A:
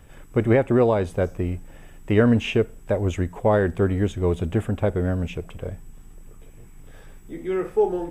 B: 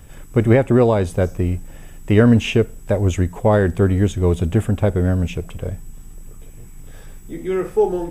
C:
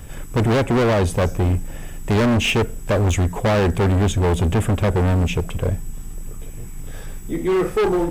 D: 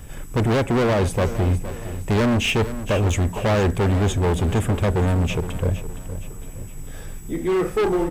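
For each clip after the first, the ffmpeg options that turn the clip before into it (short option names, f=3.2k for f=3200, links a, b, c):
-af "bass=f=250:g=4,treble=f=4k:g=7,volume=3dB"
-af "volume=21dB,asoftclip=hard,volume=-21dB,volume=6dB"
-af "aecho=1:1:465|930|1395|1860:0.224|0.0963|0.0414|0.0178,volume=-2dB"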